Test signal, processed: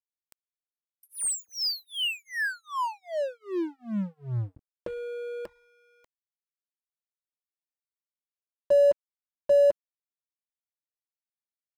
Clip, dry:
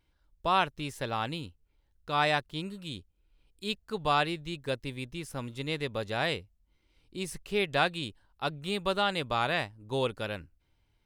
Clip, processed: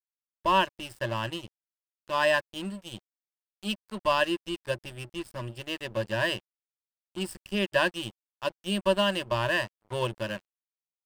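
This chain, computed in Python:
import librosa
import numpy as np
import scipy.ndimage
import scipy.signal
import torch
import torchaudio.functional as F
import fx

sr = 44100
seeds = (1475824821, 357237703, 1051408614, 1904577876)

y = fx.ripple_eq(x, sr, per_octave=1.3, db=18)
y = np.sign(y) * np.maximum(np.abs(y) - 10.0 ** (-40.0 / 20.0), 0.0)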